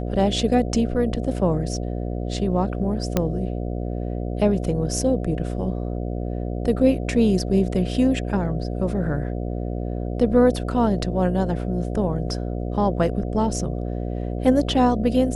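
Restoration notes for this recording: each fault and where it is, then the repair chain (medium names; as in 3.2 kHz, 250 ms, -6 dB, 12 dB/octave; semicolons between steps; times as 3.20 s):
buzz 60 Hz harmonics 12 -27 dBFS
3.17 s: pop -6 dBFS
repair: de-click; de-hum 60 Hz, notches 12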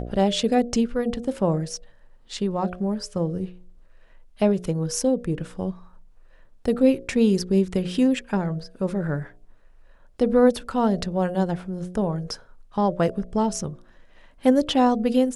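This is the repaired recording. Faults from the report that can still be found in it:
nothing left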